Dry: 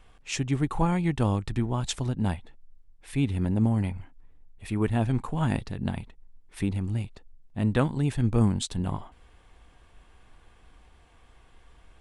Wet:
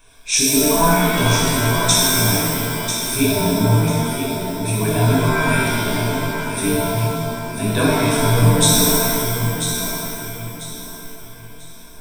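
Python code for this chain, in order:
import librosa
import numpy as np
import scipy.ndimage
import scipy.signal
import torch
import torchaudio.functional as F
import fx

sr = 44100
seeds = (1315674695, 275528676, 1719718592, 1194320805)

y = fx.bass_treble(x, sr, bass_db=-5, treble_db=13)
y = fx.dereverb_blind(y, sr, rt60_s=1.5)
y = fx.ripple_eq(y, sr, per_octave=1.6, db=14)
y = fx.echo_feedback(y, sr, ms=993, feedback_pct=30, wet_db=-8)
y = fx.rev_shimmer(y, sr, seeds[0], rt60_s=1.7, semitones=7, shimmer_db=-2, drr_db=-6.5)
y = y * librosa.db_to_amplitude(1.0)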